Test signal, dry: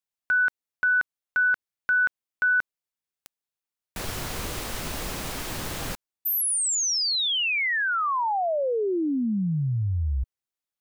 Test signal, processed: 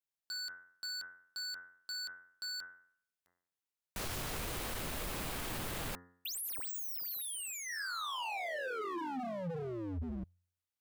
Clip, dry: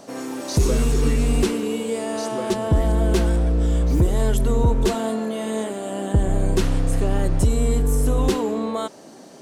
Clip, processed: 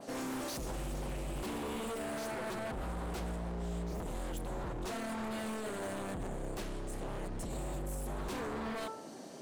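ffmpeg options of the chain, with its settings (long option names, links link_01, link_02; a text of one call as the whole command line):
ffmpeg -i in.wav -af "bandreject=frequency=88.58:width_type=h:width=4,bandreject=frequency=177.16:width_type=h:width=4,bandreject=frequency=265.74:width_type=h:width=4,bandreject=frequency=354.32:width_type=h:width=4,bandreject=frequency=442.9:width_type=h:width=4,bandreject=frequency=531.48:width_type=h:width=4,bandreject=frequency=620.06:width_type=h:width=4,bandreject=frequency=708.64:width_type=h:width=4,bandreject=frequency=797.22:width_type=h:width=4,bandreject=frequency=885.8:width_type=h:width=4,bandreject=frequency=974.38:width_type=h:width=4,bandreject=frequency=1062.96:width_type=h:width=4,bandreject=frequency=1151.54:width_type=h:width=4,bandreject=frequency=1240.12:width_type=h:width=4,bandreject=frequency=1328.7:width_type=h:width=4,bandreject=frequency=1417.28:width_type=h:width=4,bandreject=frequency=1505.86:width_type=h:width=4,bandreject=frequency=1594.44:width_type=h:width=4,bandreject=frequency=1683.02:width_type=h:width=4,bandreject=frequency=1771.6:width_type=h:width=4,bandreject=frequency=1860.18:width_type=h:width=4,bandreject=frequency=1948.76:width_type=h:width=4,bandreject=frequency=2037.34:width_type=h:width=4,acompressor=threshold=-21dB:ratio=6:release=207:knee=1,alimiter=limit=-22dB:level=0:latency=1:release=28,aeval=exprs='0.0355*(abs(mod(val(0)/0.0355+3,4)-2)-1)':channel_layout=same,adynamicequalizer=threshold=0.00224:dfrequency=5900:dqfactor=1.3:tfrequency=5900:tqfactor=1.3:attack=5:release=100:ratio=0.375:range=2.5:mode=cutabove:tftype=bell,volume=-4.5dB" out.wav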